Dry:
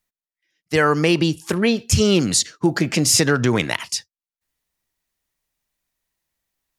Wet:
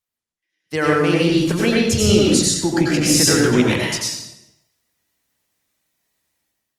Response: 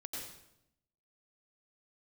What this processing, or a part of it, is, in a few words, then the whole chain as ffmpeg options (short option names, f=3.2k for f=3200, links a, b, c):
far-field microphone of a smart speaker: -filter_complex "[1:a]atrim=start_sample=2205[a];[0:a][a]afir=irnorm=-1:irlink=0,highpass=87,dynaudnorm=f=130:g=7:m=10dB,volume=-1dB" -ar 48000 -c:a libopus -b:a 32k